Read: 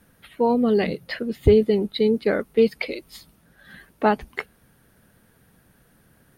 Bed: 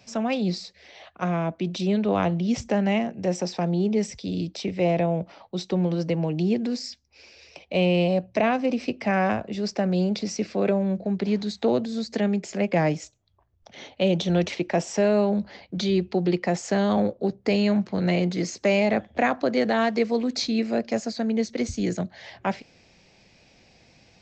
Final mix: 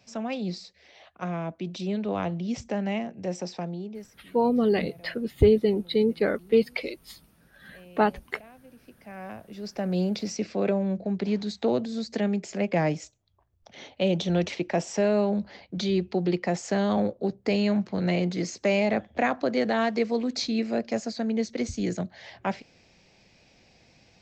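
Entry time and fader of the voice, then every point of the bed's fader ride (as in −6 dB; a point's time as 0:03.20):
3.95 s, −3.0 dB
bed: 0:03.57 −6 dB
0:04.43 −28.5 dB
0:08.67 −28.5 dB
0:09.97 −2.5 dB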